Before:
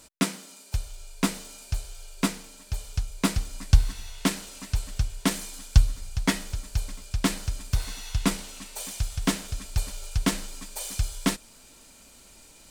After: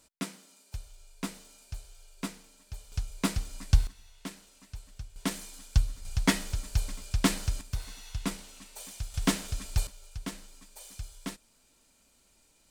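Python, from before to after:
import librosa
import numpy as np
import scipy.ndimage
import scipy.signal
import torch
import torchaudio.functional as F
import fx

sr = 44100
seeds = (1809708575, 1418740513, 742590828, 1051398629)

y = fx.gain(x, sr, db=fx.steps((0.0, -11.0), (2.92, -4.5), (3.87, -16.0), (5.16, -7.0), (6.05, -0.5), (7.61, -8.5), (9.14, -1.5), (9.87, -13.5)))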